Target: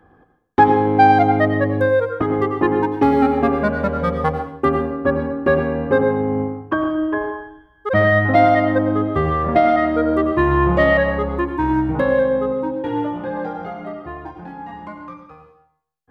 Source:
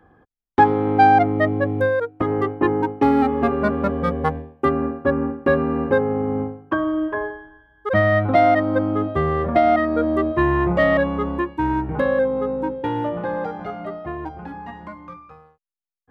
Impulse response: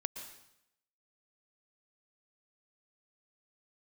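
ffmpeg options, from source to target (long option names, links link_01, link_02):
-filter_complex "[0:a]asplit=3[link_01][link_02][link_03];[link_01]afade=type=out:start_time=12.52:duration=0.02[link_04];[link_02]flanger=delay=22.5:depth=2.2:speed=1.1,afade=type=in:start_time=12.52:duration=0.02,afade=type=out:start_time=14.71:duration=0.02[link_05];[link_03]afade=type=in:start_time=14.71:duration=0.02[link_06];[link_04][link_05][link_06]amix=inputs=3:normalize=0[link_07];[1:a]atrim=start_sample=2205,asetrate=57330,aresample=44100[link_08];[link_07][link_08]afir=irnorm=-1:irlink=0,volume=5dB"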